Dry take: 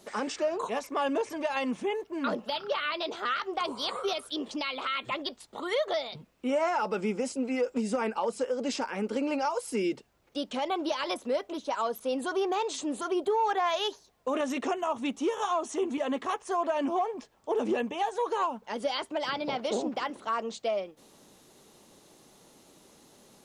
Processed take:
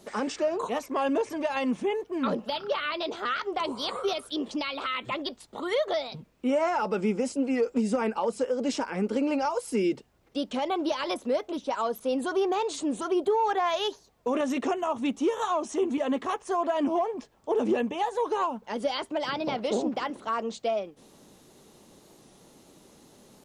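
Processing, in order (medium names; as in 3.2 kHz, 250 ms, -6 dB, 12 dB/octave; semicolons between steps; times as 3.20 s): bass shelf 450 Hz +5.5 dB; warped record 45 rpm, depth 100 cents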